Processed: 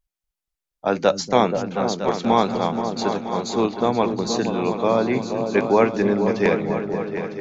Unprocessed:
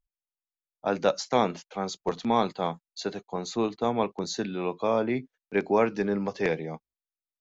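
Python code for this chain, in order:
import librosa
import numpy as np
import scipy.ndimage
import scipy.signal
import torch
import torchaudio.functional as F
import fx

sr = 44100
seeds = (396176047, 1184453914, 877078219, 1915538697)

y = fx.wow_flutter(x, sr, seeds[0], rate_hz=2.1, depth_cents=20.0)
y = fx.echo_opening(y, sr, ms=239, hz=200, octaves=2, feedback_pct=70, wet_db=-3)
y = F.gain(torch.from_numpy(y), 6.0).numpy()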